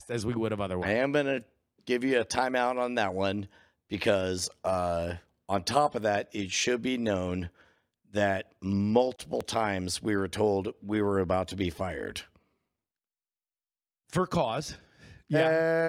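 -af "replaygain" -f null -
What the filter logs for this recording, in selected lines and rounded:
track_gain = +9.5 dB
track_peak = 0.248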